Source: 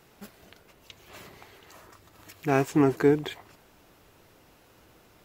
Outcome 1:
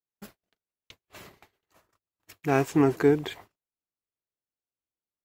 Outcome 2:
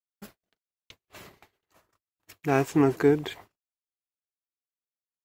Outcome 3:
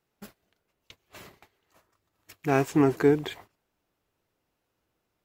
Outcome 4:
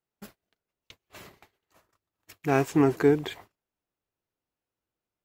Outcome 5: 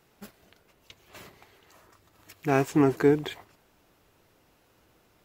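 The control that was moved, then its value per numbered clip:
gate, range: -45, -57, -21, -33, -6 dB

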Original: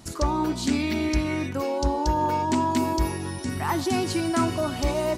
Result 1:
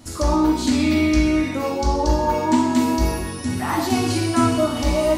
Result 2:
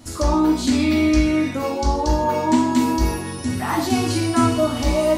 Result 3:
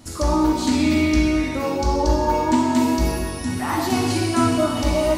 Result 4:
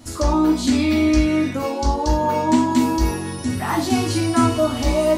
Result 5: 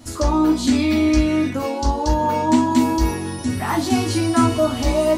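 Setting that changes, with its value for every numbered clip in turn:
non-linear reverb, gate: 290, 190, 480, 130, 90 ms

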